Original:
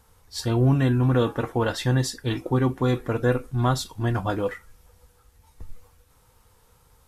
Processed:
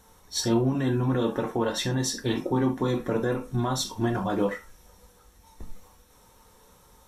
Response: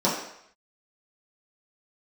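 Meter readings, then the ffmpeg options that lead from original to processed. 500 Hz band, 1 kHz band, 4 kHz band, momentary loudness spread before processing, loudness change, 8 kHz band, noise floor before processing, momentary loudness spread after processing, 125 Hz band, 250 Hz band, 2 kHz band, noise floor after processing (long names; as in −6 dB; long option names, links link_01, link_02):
−1.5 dB, −2.5 dB, +1.5 dB, 9 LU, −3.0 dB, +3.5 dB, −60 dBFS, 4 LU, −7.0 dB, −1.0 dB, −3.5 dB, −57 dBFS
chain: -filter_complex "[0:a]alimiter=limit=-21dB:level=0:latency=1:release=175,asplit=2[link_01][link_02];[1:a]atrim=start_sample=2205,atrim=end_sample=3528,highshelf=frequency=2200:gain=8.5[link_03];[link_02][link_03]afir=irnorm=-1:irlink=0,volume=-16.5dB[link_04];[link_01][link_04]amix=inputs=2:normalize=0"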